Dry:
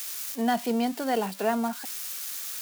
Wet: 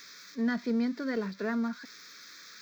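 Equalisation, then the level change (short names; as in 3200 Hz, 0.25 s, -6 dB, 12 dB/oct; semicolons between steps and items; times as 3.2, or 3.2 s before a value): air absorption 210 m; high shelf 4800 Hz +5.5 dB; fixed phaser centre 2900 Hz, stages 6; 0.0 dB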